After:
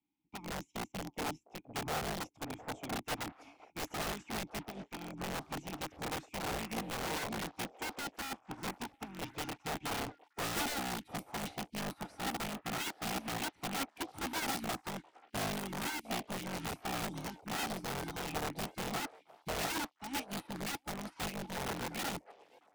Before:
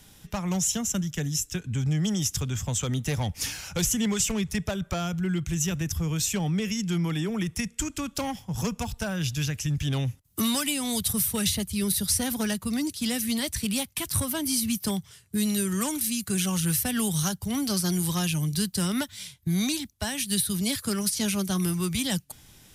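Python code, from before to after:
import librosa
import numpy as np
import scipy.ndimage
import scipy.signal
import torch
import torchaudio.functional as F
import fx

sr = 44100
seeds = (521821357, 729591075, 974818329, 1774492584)

y = fx.octave_divider(x, sr, octaves=2, level_db=1.0)
y = fx.vowel_filter(y, sr, vowel='u')
y = (np.mod(10.0 ** (36.5 / 20.0) * y + 1.0, 2.0) - 1.0) / 10.0 ** (36.5 / 20.0)
y = fx.echo_stepped(y, sr, ms=705, hz=580.0, octaves=0.7, feedback_pct=70, wet_db=-3.5)
y = fx.upward_expand(y, sr, threshold_db=-57.0, expansion=2.5)
y = y * librosa.db_to_amplitude(6.5)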